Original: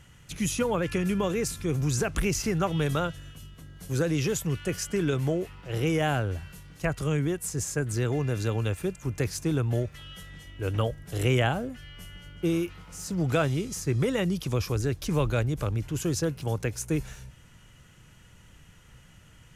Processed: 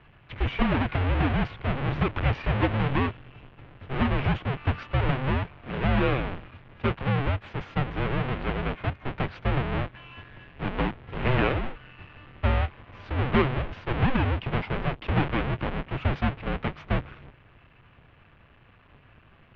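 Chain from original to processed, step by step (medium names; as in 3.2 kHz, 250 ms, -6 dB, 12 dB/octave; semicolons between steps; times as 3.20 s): square wave that keeps the level; mistuned SSB -270 Hz 170–3300 Hz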